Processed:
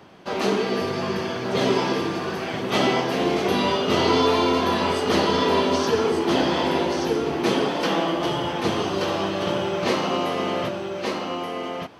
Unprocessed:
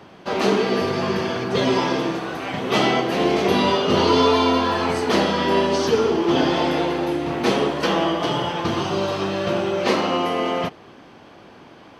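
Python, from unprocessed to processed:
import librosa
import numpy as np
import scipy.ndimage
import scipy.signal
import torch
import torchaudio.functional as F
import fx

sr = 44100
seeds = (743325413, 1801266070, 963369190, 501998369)

p1 = fx.high_shelf(x, sr, hz=7700.0, db=4.5)
p2 = p1 + fx.echo_single(p1, sr, ms=1178, db=-4.0, dry=0)
y = p2 * librosa.db_to_amplitude(-3.5)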